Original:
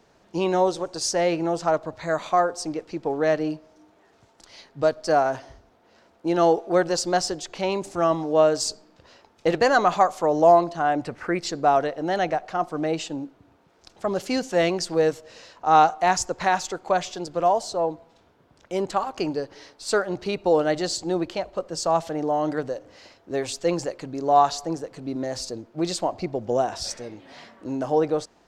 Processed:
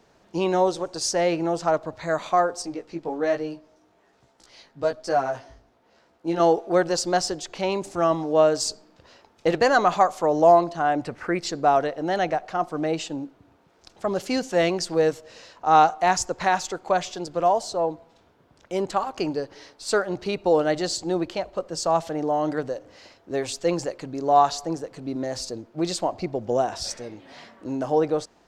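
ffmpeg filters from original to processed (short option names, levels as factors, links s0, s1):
-filter_complex "[0:a]asettb=1/sr,asplit=3[s0][s1][s2];[s0]atrim=end=2.624[s3];[s1]atrim=start=2.62:end=6.4,asetpts=PTS-STARTPTS,afade=t=in:d=0.004:c=qsin,afade=t=out:st=3.776:d=0.004:c=qsin,flanger=delay=15:depth=3.3:speed=1.2[s4];[s2]atrim=start=6.396[s5];[s3][s4]acrossfade=d=0.004:c1=hsin:c2=qsin[s6];[s6][s5]acrossfade=d=0.004:c1=qsin:c2=hsin"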